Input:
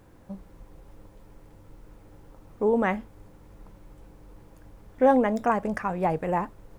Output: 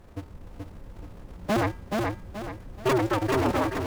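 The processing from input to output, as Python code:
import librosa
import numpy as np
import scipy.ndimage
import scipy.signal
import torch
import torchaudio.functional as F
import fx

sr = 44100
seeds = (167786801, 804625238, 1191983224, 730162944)

p1 = fx.cycle_switch(x, sr, every=2, mode='inverted')
p2 = fx.low_shelf(p1, sr, hz=150.0, db=6.0)
p3 = fx.comb_fb(p2, sr, f0_hz=180.0, decay_s=0.75, harmonics='odd', damping=0.0, mix_pct=60)
p4 = fx.stretch_vocoder(p3, sr, factor=0.57)
p5 = fx.high_shelf(p4, sr, hz=5500.0, db=-4.5)
p6 = fx.fold_sine(p5, sr, drive_db=11, ceiling_db=-15.5)
p7 = p5 + (p6 * librosa.db_to_amplitude(-9.0))
y = fx.echo_feedback(p7, sr, ms=428, feedback_pct=37, wet_db=-3)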